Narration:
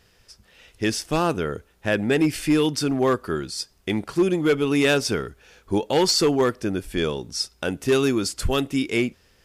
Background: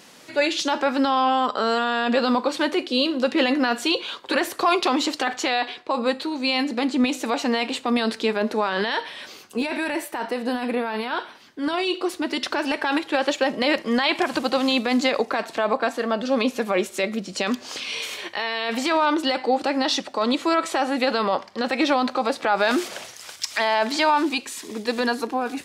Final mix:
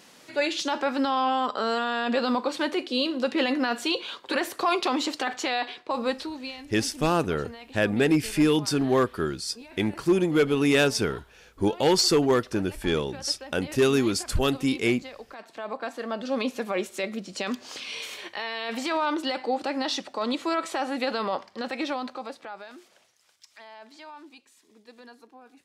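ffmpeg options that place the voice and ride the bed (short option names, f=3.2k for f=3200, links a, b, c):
-filter_complex "[0:a]adelay=5900,volume=-1.5dB[a];[1:a]volume=10dB,afade=t=out:st=6.16:d=0.41:silence=0.158489,afade=t=in:st=15.29:d=1.05:silence=0.188365,afade=t=out:st=21.39:d=1.3:silence=0.105925[b];[a][b]amix=inputs=2:normalize=0"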